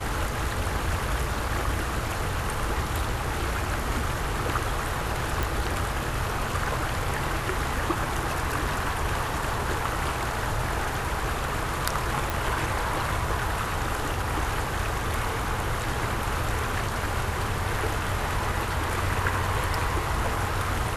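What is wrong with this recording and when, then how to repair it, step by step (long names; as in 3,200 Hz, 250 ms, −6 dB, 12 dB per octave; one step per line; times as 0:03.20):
0:05.43: click
0:12.30: click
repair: click removal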